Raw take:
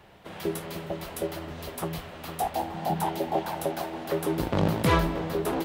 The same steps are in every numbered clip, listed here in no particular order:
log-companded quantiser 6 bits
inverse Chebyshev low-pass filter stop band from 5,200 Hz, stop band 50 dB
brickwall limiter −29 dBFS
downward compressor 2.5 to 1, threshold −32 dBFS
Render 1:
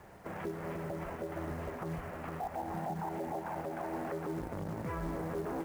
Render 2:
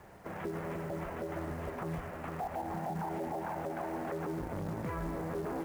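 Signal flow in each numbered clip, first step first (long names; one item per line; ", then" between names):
downward compressor, then brickwall limiter, then inverse Chebyshev low-pass filter, then log-companded quantiser
inverse Chebyshev low-pass filter, then brickwall limiter, then downward compressor, then log-companded quantiser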